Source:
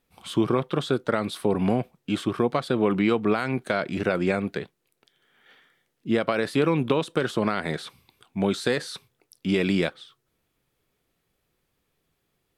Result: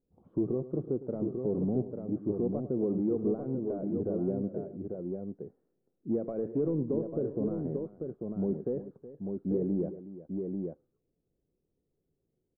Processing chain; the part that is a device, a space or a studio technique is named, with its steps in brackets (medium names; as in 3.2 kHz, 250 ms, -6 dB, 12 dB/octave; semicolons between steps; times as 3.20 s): overdriven synthesiser ladder filter (saturation -17.5 dBFS, distortion -13 dB; four-pole ladder low-pass 570 Hz, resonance 25%); multi-tap echo 106/370/844 ms -15/-15/-5 dB; low-pass that closes with the level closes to 2.7 kHz; 6.11–6.71 s: peaking EQ 2.5 kHz +9 dB 1.4 oct